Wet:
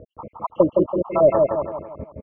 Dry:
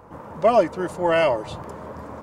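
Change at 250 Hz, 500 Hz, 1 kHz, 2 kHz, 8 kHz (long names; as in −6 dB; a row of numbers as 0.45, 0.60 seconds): +5.0 dB, +2.0 dB, −3.5 dB, below −15 dB, can't be measured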